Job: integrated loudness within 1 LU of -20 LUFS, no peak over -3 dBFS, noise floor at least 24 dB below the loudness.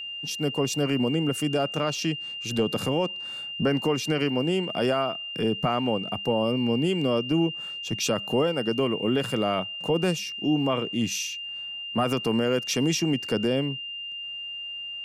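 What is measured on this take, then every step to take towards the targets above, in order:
steady tone 2800 Hz; tone level -33 dBFS; loudness -26.5 LUFS; peak -13.5 dBFS; loudness target -20.0 LUFS
-> notch 2800 Hz, Q 30; gain +6.5 dB

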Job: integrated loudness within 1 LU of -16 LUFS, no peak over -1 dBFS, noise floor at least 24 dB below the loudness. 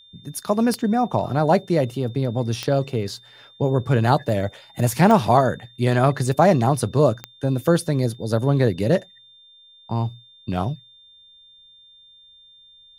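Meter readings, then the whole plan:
clicks 4; steady tone 3600 Hz; tone level -48 dBFS; loudness -21.0 LUFS; peak -2.0 dBFS; loudness target -16.0 LUFS
-> de-click; notch 3600 Hz, Q 30; gain +5 dB; limiter -1 dBFS

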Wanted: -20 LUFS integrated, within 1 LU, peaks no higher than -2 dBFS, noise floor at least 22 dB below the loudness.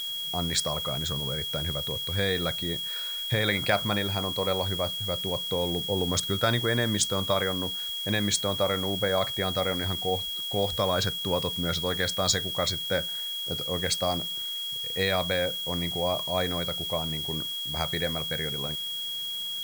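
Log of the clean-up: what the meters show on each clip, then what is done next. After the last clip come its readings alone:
steady tone 3300 Hz; tone level -31 dBFS; noise floor -34 dBFS; noise floor target -50 dBFS; loudness -27.5 LUFS; peak -9.5 dBFS; loudness target -20.0 LUFS
-> notch 3300 Hz, Q 30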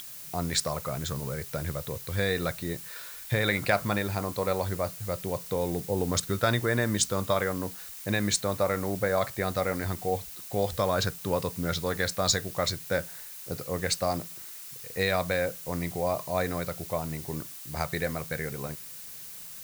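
steady tone none; noise floor -43 dBFS; noise floor target -52 dBFS
-> denoiser 9 dB, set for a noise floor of -43 dBFS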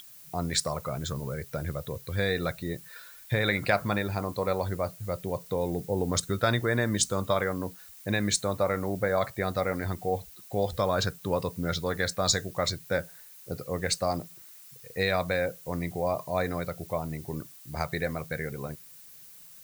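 noise floor -50 dBFS; noise floor target -52 dBFS
-> denoiser 6 dB, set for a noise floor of -50 dBFS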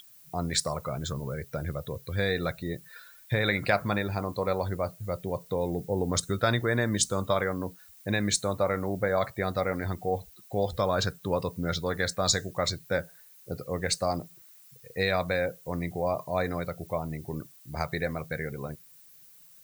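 noise floor -54 dBFS; loudness -30.0 LUFS; peak -9.5 dBFS; loudness target -20.0 LUFS
-> gain +10 dB; limiter -2 dBFS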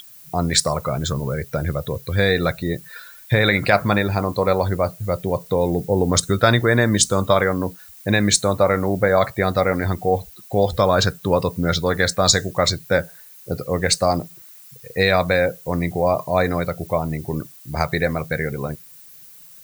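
loudness -20.0 LUFS; peak -2.0 dBFS; noise floor -44 dBFS

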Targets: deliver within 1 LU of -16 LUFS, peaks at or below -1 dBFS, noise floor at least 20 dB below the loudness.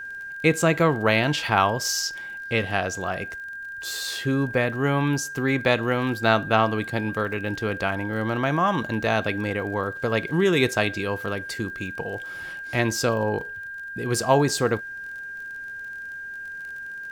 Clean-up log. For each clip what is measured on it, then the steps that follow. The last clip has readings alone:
ticks 32/s; steady tone 1600 Hz; tone level -33 dBFS; loudness -25.0 LUFS; peak -5.0 dBFS; loudness target -16.0 LUFS
-> de-click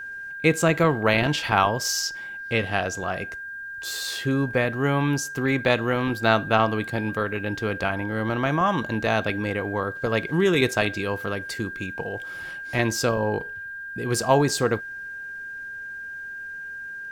ticks 0.88/s; steady tone 1600 Hz; tone level -33 dBFS
-> notch 1600 Hz, Q 30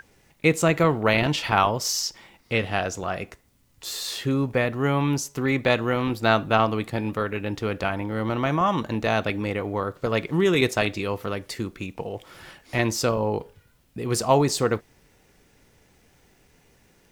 steady tone none; loudness -24.5 LUFS; peak -5.5 dBFS; loudness target -16.0 LUFS
-> gain +8.5 dB; limiter -1 dBFS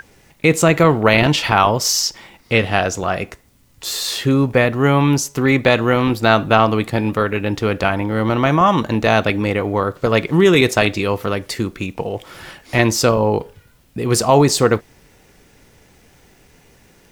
loudness -16.5 LUFS; peak -1.0 dBFS; noise floor -52 dBFS

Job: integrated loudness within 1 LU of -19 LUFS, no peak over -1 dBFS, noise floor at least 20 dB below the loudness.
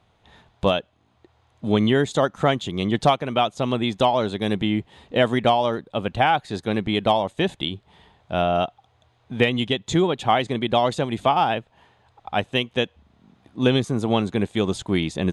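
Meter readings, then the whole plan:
loudness -22.5 LUFS; peak -6.0 dBFS; loudness target -19.0 LUFS
-> gain +3.5 dB

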